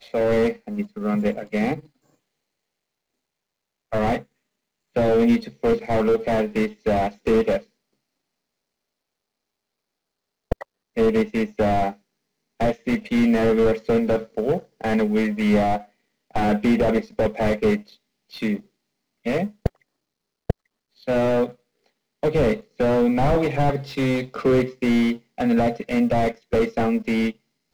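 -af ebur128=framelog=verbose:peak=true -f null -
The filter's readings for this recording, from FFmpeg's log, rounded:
Integrated loudness:
  I:         -22.4 LUFS
  Threshold: -32.9 LUFS
Loudness range:
  LRA:         7.9 LU
  Threshold: -43.8 LUFS
  LRA low:   -29.3 LUFS
  LRA high:  -21.4 LUFS
True peak:
  Peak:       -5.5 dBFS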